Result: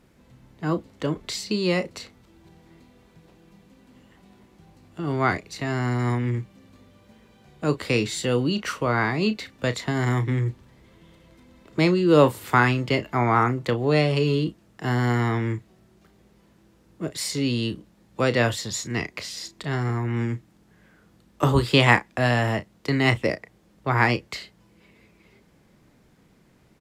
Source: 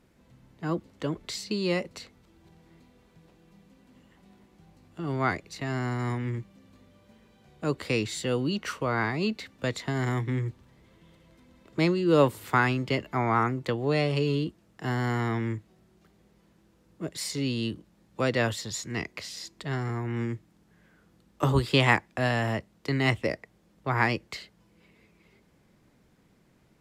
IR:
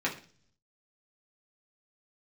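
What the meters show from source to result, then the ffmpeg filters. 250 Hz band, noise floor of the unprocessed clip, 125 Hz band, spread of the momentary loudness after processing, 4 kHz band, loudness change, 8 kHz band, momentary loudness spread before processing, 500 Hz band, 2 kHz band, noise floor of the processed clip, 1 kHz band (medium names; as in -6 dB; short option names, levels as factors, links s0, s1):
+4.5 dB, -64 dBFS, +5.0 dB, 13 LU, +5.0 dB, +5.0 dB, +5.0 dB, 14 LU, +5.0 dB, +4.5 dB, -59 dBFS, +5.0 dB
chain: -filter_complex "[0:a]asplit=2[s0][s1];[s1]adelay=33,volume=0.251[s2];[s0][s2]amix=inputs=2:normalize=0,volume=1.68"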